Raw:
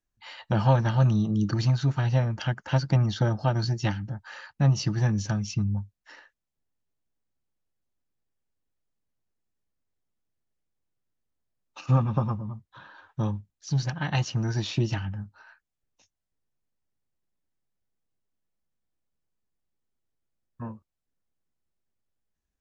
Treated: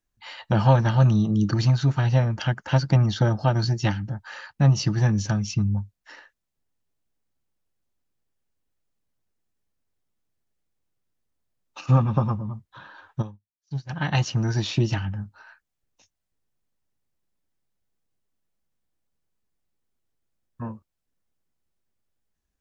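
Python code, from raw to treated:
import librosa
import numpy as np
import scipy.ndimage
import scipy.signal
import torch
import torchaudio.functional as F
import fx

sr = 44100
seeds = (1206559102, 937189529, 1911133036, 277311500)

y = fx.upward_expand(x, sr, threshold_db=-40.0, expansion=2.5, at=(13.21, 13.89), fade=0.02)
y = y * librosa.db_to_amplitude(3.5)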